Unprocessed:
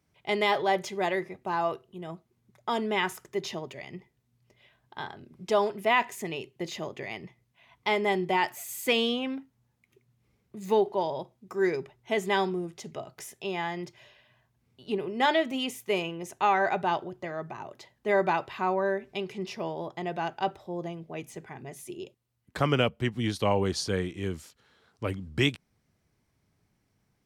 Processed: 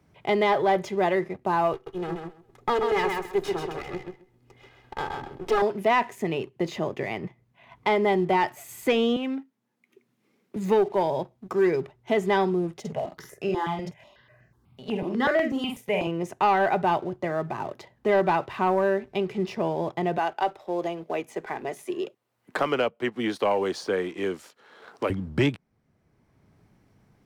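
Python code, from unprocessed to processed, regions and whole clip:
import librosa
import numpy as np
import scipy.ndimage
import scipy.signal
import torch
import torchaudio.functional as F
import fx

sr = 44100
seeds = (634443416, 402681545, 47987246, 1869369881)

y = fx.chain(x, sr, fx.lower_of_two(delay_ms=2.4),
    fx.echo_feedback(ms=132, feedback_pct=20, wet_db=-5.0), at=(1.73, 5.62))
y = fx.chain(y, sr, fx.highpass(hz=240.0, slope=24),
    fx.peak_eq(hz=700.0, db=-7.5, octaves=2.3), at=(9.16, 10.56))
y = fx.chain(y, sr, fx.doubler(ms=48.0, db=-4.5),
    fx.phaser_held(hz=8.1, low_hz=320.0, high_hz=3500.0), at=(12.8, 16.07))
y = fx.chain(y, sr, fx.highpass(hz=400.0, slope=12),
    fx.band_squash(depth_pct=40), at=(20.18, 25.1))
y = fx.high_shelf(y, sr, hz=2400.0, db=-11.5)
y = fx.leveller(y, sr, passes=1)
y = fx.band_squash(y, sr, depth_pct=40)
y = F.gain(torch.from_numpy(y), 3.0).numpy()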